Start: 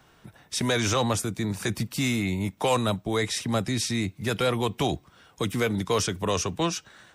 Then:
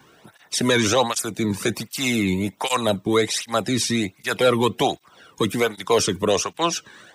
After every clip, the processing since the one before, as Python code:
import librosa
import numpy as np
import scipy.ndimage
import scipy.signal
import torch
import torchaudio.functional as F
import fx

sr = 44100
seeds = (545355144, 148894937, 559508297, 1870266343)

y = fx.flanger_cancel(x, sr, hz=1.3, depth_ms=1.6)
y = y * 10.0 ** (8.5 / 20.0)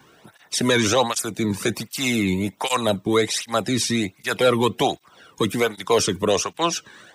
y = x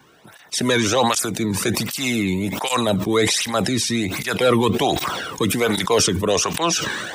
y = fx.sustainer(x, sr, db_per_s=31.0)